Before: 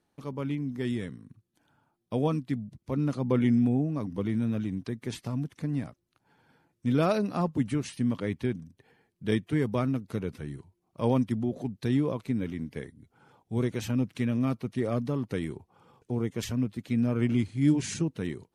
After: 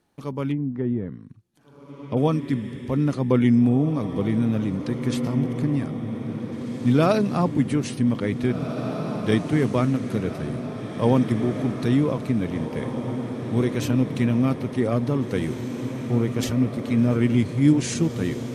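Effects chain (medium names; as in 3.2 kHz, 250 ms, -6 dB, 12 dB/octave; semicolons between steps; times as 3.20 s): echo that smears into a reverb 1896 ms, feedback 61%, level -8 dB; 0.51–2.17 s: low-pass that closes with the level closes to 800 Hz, closed at -28 dBFS; trim +6 dB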